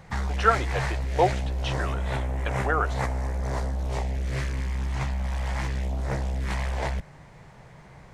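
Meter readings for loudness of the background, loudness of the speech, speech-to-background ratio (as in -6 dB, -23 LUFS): -29.5 LUFS, -28.0 LUFS, 1.5 dB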